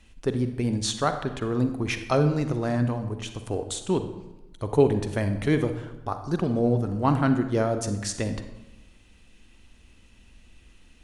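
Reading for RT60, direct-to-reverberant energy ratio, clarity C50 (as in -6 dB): 1.1 s, 8.0 dB, 9.0 dB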